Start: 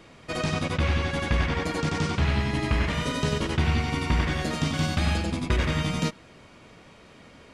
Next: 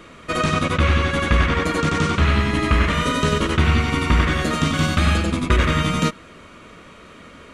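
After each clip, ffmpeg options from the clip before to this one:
ffmpeg -i in.wav -af "equalizer=frequency=125:width_type=o:width=0.33:gain=-9,equalizer=frequency=800:width_type=o:width=0.33:gain=-8,equalizer=frequency=1250:width_type=o:width=0.33:gain=7,equalizer=frequency=5000:width_type=o:width=0.33:gain=-7,volume=7.5dB" out.wav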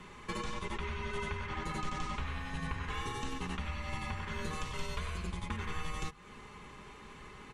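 ffmpeg -i in.wav -af "acompressor=threshold=-27dB:ratio=6,afreqshift=-150,aecho=1:1:4.9:0.49,volume=-8dB" out.wav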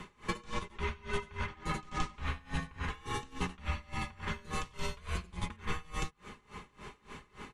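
ffmpeg -i in.wav -af "aeval=exprs='val(0)*pow(10,-24*(0.5-0.5*cos(2*PI*3.5*n/s))/20)':channel_layout=same,volume=6dB" out.wav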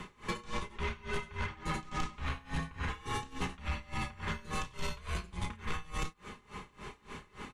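ffmpeg -i in.wav -filter_complex "[0:a]asplit=2[link_01][link_02];[link_02]adelay=31,volume=-12dB[link_03];[link_01][link_03]amix=inputs=2:normalize=0,asoftclip=type=tanh:threshold=-29dB,volume=2dB" out.wav

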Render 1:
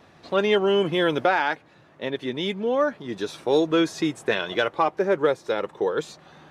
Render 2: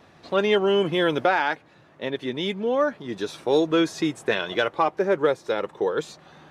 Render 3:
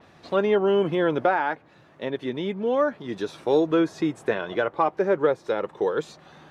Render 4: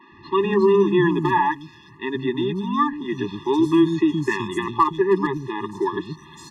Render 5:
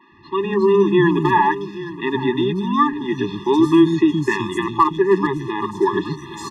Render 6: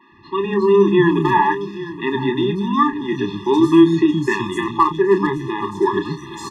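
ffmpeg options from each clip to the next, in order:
ffmpeg -i in.wav -af anull out.wav
ffmpeg -i in.wav -filter_complex "[0:a]acrossover=split=1700[link_01][link_02];[link_02]acompressor=threshold=-41dB:ratio=6[link_03];[link_01][link_03]amix=inputs=2:normalize=0,adynamicequalizer=threshold=0.00398:dfrequency=5000:dqfactor=0.7:tfrequency=5000:tqfactor=0.7:attack=5:release=100:ratio=0.375:range=2.5:mode=cutabove:tftype=highshelf" out.wav
ffmpeg -i in.wav -filter_complex "[0:a]acrossover=split=250|4000[link_01][link_02][link_03];[link_01]adelay=120[link_04];[link_03]adelay=360[link_05];[link_04][link_02][link_05]amix=inputs=3:normalize=0,asoftclip=type=hard:threshold=-12.5dB,afftfilt=real='re*eq(mod(floor(b*sr/1024/410),2),0)':imag='im*eq(mod(floor(b*sr/1024/410),2),0)':win_size=1024:overlap=0.75,volume=9dB" out.wav
ffmpeg -i in.wav -af "aecho=1:1:822|1644|2466:0.15|0.0524|0.0183,dynaudnorm=framelen=270:gausssize=5:maxgain=13dB,volume=-2.5dB" out.wav
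ffmpeg -i in.wav -filter_complex "[0:a]asplit=2[link_01][link_02];[link_02]adelay=30,volume=-9dB[link_03];[link_01][link_03]amix=inputs=2:normalize=0" out.wav

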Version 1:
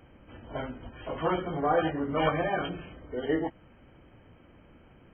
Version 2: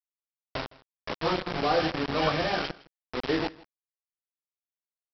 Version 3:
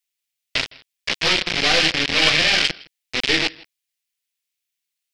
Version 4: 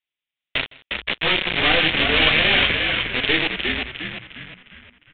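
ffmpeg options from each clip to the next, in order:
ffmpeg -i in.wav -af "aresample=11025,acrusher=bits=4:mix=0:aa=0.000001,aresample=44100,aecho=1:1:161:0.0794" out.wav
ffmpeg -i in.wav -af "aeval=exprs='0.282*(cos(1*acos(clip(val(0)/0.282,-1,1)))-cos(1*PI/2))+0.0398*(cos(6*acos(clip(val(0)/0.282,-1,1)))-cos(6*PI/2))':channel_layout=same,highshelf=frequency=1600:width_type=q:width=1.5:gain=12.5,volume=2dB" out.wav
ffmpeg -i in.wav -filter_complex "[0:a]aresample=8000,aresample=44100,asplit=2[link_01][link_02];[link_02]asplit=6[link_03][link_04][link_05][link_06][link_07][link_08];[link_03]adelay=356,afreqshift=-62,volume=-4dB[link_09];[link_04]adelay=712,afreqshift=-124,volume=-11.1dB[link_10];[link_05]adelay=1068,afreqshift=-186,volume=-18.3dB[link_11];[link_06]adelay=1424,afreqshift=-248,volume=-25.4dB[link_12];[link_07]adelay=1780,afreqshift=-310,volume=-32.5dB[link_13];[link_08]adelay=2136,afreqshift=-372,volume=-39.7dB[link_14];[link_09][link_10][link_11][link_12][link_13][link_14]amix=inputs=6:normalize=0[link_15];[link_01][link_15]amix=inputs=2:normalize=0" out.wav

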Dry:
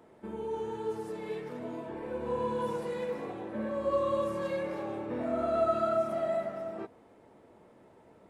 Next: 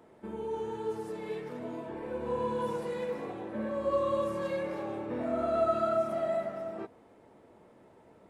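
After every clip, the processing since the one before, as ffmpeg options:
ffmpeg -i in.wav -af anull out.wav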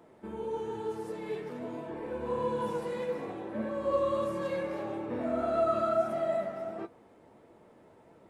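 ffmpeg -i in.wav -af "flanger=delay=5.8:depth=7:regen=67:speed=1.6:shape=sinusoidal,volume=4.5dB" out.wav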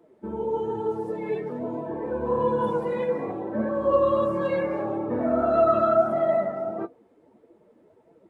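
ffmpeg -i in.wav -af "afftdn=noise_reduction=15:noise_floor=-46,volume=8dB" out.wav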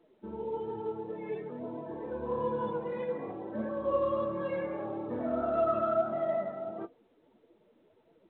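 ffmpeg -i in.wav -af "volume=-8.5dB" -ar 8000 -c:a pcm_mulaw out.wav

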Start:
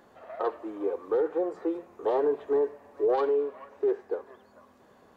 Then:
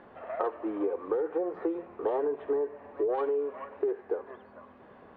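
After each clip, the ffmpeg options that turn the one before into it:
ffmpeg -i in.wav -af "lowpass=frequency=2900:width=0.5412,lowpass=frequency=2900:width=1.3066,acompressor=threshold=-31dB:ratio=10,volume=5dB" out.wav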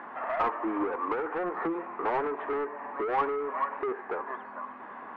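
ffmpeg -i in.wav -filter_complex "[0:a]asplit=2[link_01][link_02];[link_02]highpass=frequency=720:poles=1,volume=22dB,asoftclip=type=tanh:threshold=-15dB[link_03];[link_01][link_03]amix=inputs=2:normalize=0,lowpass=frequency=1100:poles=1,volume=-6dB,equalizer=frequency=125:width_type=o:width=1:gain=-6,equalizer=frequency=250:width_type=o:width=1:gain=7,equalizer=frequency=500:width_type=o:width=1:gain=-7,equalizer=frequency=1000:width_type=o:width=1:gain=10,equalizer=frequency=2000:width_type=o:width=1:gain=8,volume=-6.5dB" out.wav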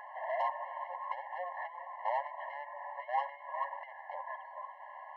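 ffmpeg -i in.wav -af "afftfilt=real='re*eq(mod(floor(b*sr/1024/550),2),1)':imag='im*eq(mod(floor(b*sr/1024/550),2),1)':win_size=1024:overlap=0.75,volume=-3dB" out.wav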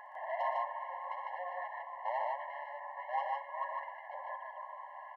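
ffmpeg -i in.wav -af "aecho=1:1:61.22|119.5|151.6:0.251|0.355|0.794,volume=-3dB" out.wav

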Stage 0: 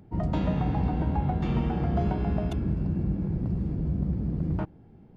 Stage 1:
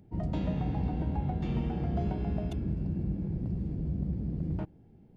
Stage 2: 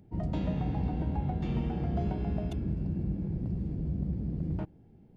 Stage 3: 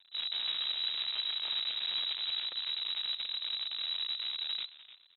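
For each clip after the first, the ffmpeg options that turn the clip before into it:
ffmpeg -i in.wav -af "equalizer=frequency=1200:width=1.3:gain=-7,volume=-4.5dB" out.wav
ffmpeg -i in.wav -af anull out.wav
ffmpeg -i in.wav -filter_complex "[0:a]acrusher=bits=6:dc=4:mix=0:aa=0.000001,asplit=2[link_01][link_02];[link_02]adelay=300,highpass=300,lowpass=3400,asoftclip=type=hard:threshold=-28dB,volume=-10dB[link_03];[link_01][link_03]amix=inputs=2:normalize=0,lowpass=frequency=3400:width_type=q:width=0.5098,lowpass=frequency=3400:width_type=q:width=0.6013,lowpass=frequency=3400:width_type=q:width=0.9,lowpass=frequency=3400:width_type=q:width=2.563,afreqshift=-4000,volume=-5dB" out.wav

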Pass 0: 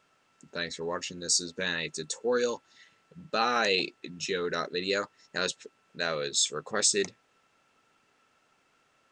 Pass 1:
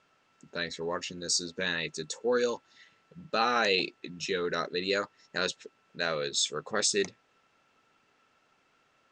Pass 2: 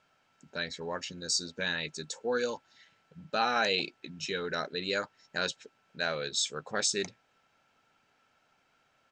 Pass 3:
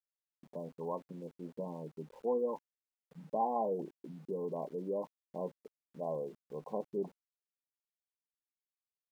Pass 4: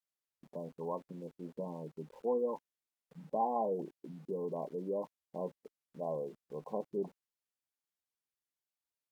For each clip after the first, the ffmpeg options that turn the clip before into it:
ffmpeg -i in.wav -af "lowpass=6400" out.wav
ffmpeg -i in.wav -af "aecho=1:1:1.3:0.32,volume=-2dB" out.wav
ffmpeg -i in.wav -af "afftfilt=real='re*between(b*sr/4096,140,1100)':imag='im*between(b*sr/4096,140,1100)':win_size=4096:overlap=0.75,aeval=exprs='val(0)*gte(abs(val(0)),0.00126)':channel_layout=same,volume=-1.5dB" out.wav
ffmpeg -i in.wav -ar 44100 -c:a libvorbis -b:a 192k out.ogg

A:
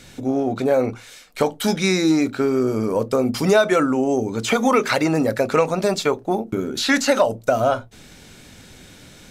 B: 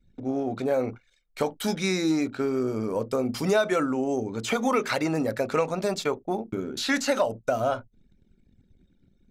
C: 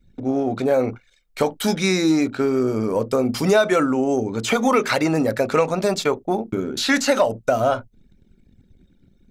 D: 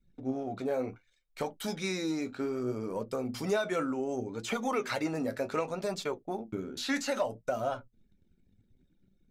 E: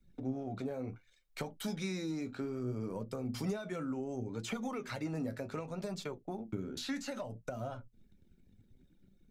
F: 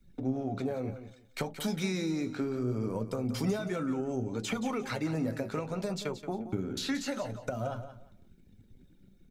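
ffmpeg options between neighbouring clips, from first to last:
ffmpeg -i in.wav -af "anlmdn=1.58,volume=-7dB" out.wav
ffmpeg -i in.wav -af "acontrast=69" out.wav
ffmpeg -i in.wav -af "flanger=delay=4.8:depth=7.4:regen=57:speed=0.66:shape=triangular,volume=-9dB" out.wav
ffmpeg -i in.wav -filter_complex "[0:a]acrossover=split=200[link_01][link_02];[link_02]acompressor=threshold=-44dB:ratio=5[link_03];[link_01][link_03]amix=inputs=2:normalize=0,volume=3dB" out.wav
ffmpeg -i in.wav -af "aecho=1:1:176|352|528:0.266|0.0559|0.0117,volume=5.5dB" out.wav

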